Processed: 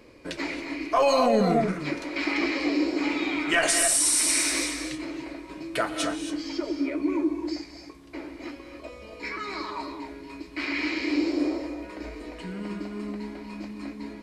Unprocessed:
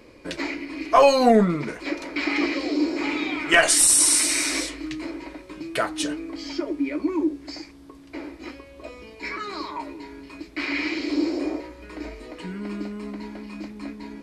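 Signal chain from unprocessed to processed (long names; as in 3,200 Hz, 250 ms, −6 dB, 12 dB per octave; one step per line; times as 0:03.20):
reverb whose tail is shaped and stops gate 300 ms rising, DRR 5 dB
brickwall limiter −10 dBFS, peak gain reduction 8 dB
level −2.5 dB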